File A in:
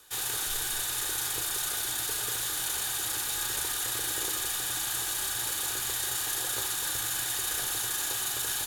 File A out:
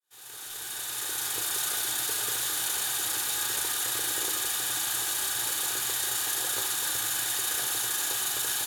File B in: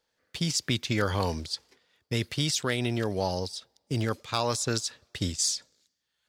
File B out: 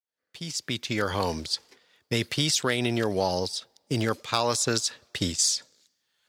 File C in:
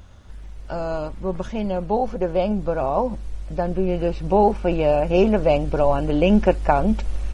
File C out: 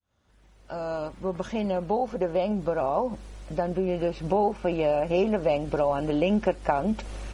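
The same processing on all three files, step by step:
fade in at the beginning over 1.61 s
high-pass filter 180 Hz 6 dB per octave
downward compressor 2 to 1, threshold −27 dBFS
loudness normalisation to −27 LKFS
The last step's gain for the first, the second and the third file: +2.5, +5.5, +1.5 decibels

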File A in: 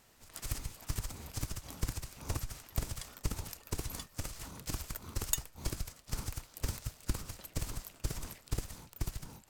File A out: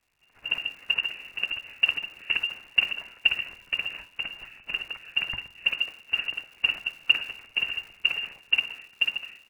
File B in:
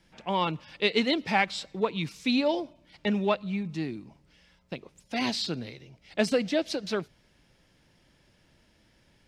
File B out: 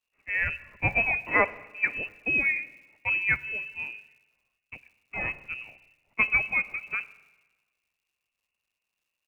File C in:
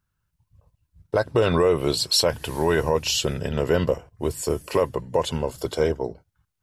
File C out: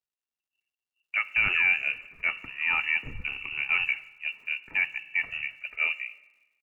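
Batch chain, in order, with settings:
voice inversion scrambler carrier 2,800 Hz
far-end echo of a speakerphone 160 ms, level −30 dB
spring reverb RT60 2.5 s, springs 42/49/56 ms, chirp 45 ms, DRR 15.5 dB
surface crackle 250 per second −47 dBFS
multiband upward and downward expander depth 70%
loudness normalisation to −27 LKFS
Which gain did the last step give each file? +7.5, −1.5, −6.5 decibels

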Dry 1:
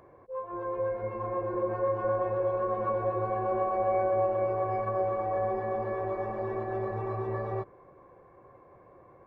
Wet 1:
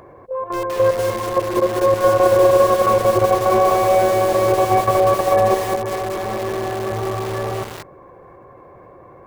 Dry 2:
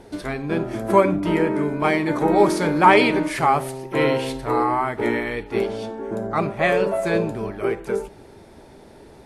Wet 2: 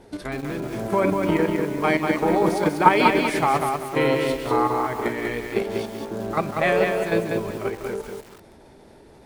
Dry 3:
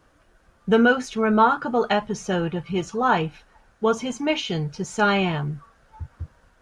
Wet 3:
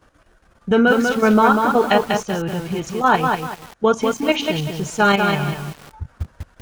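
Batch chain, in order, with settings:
output level in coarse steps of 10 dB
feedback echo at a low word length 193 ms, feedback 35%, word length 7 bits, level −4 dB
normalise the peak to −1.5 dBFS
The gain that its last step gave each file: +16.5, +1.0, +7.0 decibels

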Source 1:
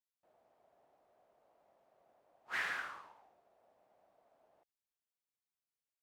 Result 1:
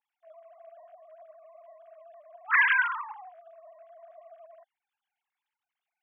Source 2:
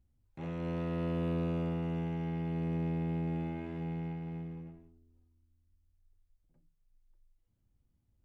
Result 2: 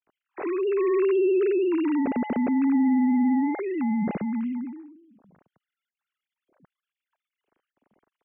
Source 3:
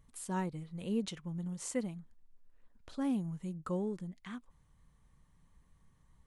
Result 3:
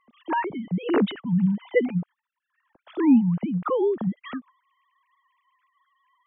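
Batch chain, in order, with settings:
three sine waves on the formant tracks
loudness normalisation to −24 LKFS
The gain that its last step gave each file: +16.0, +12.0, +14.5 decibels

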